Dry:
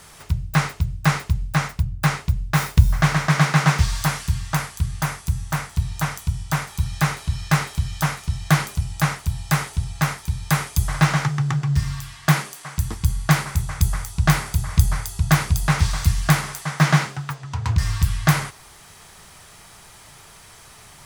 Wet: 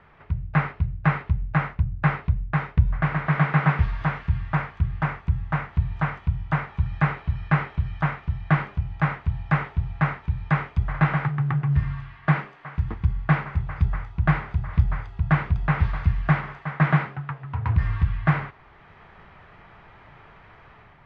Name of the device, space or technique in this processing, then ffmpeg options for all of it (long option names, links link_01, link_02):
action camera in a waterproof case: -af "lowpass=frequency=2300:width=0.5412,lowpass=frequency=2300:width=1.3066,dynaudnorm=framelen=160:gausssize=5:maxgain=5.5dB,volume=-5.5dB" -ar 22050 -c:a aac -b:a 48k